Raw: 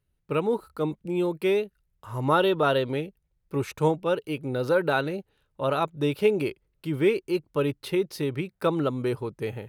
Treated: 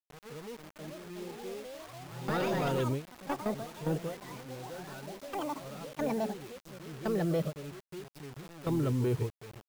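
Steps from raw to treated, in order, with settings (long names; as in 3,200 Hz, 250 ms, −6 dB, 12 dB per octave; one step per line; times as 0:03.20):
leveller curve on the samples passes 2
backwards echo 217 ms −7.5 dB
noise gate with hold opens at −9 dBFS
harmonic and percussive parts rebalanced percussive −8 dB
compressor whose output falls as the input rises −19 dBFS, ratio −1
delay with pitch and tempo change per echo 563 ms, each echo +5 semitones, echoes 3
low-shelf EQ 170 Hz +9.5 dB
brickwall limiter −16.5 dBFS, peak gain reduction 10.5 dB
bit reduction 7 bits
level −6.5 dB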